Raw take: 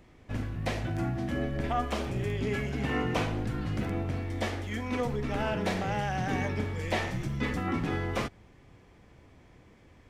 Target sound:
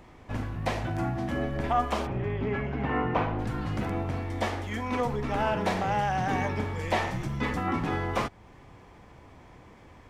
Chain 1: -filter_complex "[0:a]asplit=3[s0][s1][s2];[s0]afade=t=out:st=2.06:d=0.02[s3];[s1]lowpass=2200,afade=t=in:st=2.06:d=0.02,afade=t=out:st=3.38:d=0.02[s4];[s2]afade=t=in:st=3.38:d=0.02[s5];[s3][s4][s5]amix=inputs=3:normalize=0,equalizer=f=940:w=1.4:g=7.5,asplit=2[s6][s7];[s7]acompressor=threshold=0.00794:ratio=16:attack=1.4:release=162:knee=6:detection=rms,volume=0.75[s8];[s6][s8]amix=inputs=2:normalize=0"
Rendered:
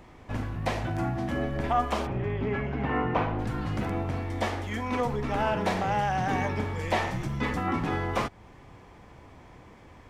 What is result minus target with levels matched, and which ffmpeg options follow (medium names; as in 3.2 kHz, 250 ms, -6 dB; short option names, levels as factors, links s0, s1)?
compression: peak gain reduction -7 dB
-filter_complex "[0:a]asplit=3[s0][s1][s2];[s0]afade=t=out:st=2.06:d=0.02[s3];[s1]lowpass=2200,afade=t=in:st=2.06:d=0.02,afade=t=out:st=3.38:d=0.02[s4];[s2]afade=t=in:st=3.38:d=0.02[s5];[s3][s4][s5]amix=inputs=3:normalize=0,equalizer=f=940:w=1.4:g=7.5,asplit=2[s6][s7];[s7]acompressor=threshold=0.00335:ratio=16:attack=1.4:release=162:knee=6:detection=rms,volume=0.75[s8];[s6][s8]amix=inputs=2:normalize=0"